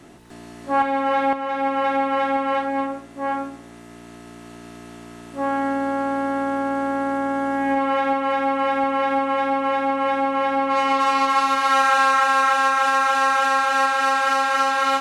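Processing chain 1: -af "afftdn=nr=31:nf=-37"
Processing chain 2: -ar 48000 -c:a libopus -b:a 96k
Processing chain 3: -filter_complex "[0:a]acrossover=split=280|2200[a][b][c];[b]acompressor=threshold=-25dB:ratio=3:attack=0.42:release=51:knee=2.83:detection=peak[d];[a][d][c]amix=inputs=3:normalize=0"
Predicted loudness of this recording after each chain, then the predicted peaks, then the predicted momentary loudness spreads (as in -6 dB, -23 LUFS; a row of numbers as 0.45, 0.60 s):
-20.5, -20.5, -25.0 LUFS; -7.5, -7.0, -13.5 dBFS; 7, 9, 17 LU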